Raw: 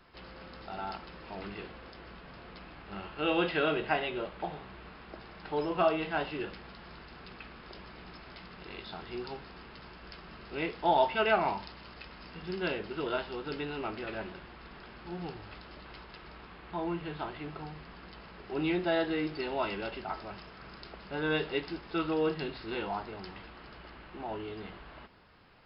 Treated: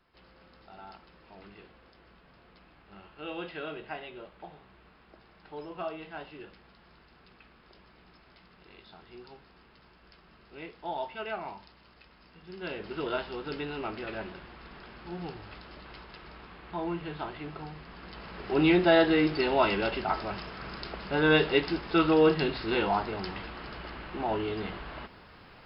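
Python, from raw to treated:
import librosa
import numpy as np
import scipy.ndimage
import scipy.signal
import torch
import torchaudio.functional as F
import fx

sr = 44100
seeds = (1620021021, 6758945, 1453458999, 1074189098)

y = fx.gain(x, sr, db=fx.line((12.46, -9.5), (12.92, 1.0), (17.85, 1.0), (18.48, 8.0)))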